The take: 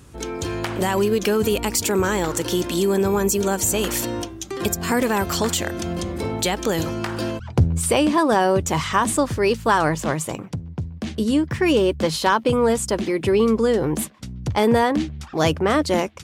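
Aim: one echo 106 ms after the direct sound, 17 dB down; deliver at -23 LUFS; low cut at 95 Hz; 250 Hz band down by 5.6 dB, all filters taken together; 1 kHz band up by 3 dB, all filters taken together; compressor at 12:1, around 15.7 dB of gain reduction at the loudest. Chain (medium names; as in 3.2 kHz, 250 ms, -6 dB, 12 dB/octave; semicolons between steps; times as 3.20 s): high-pass 95 Hz; peaking EQ 250 Hz -8 dB; peaking EQ 1 kHz +4 dB; compression 12:1, threshold -27 dBFS; delay 106 ms -17 dB; trim +8.5 dB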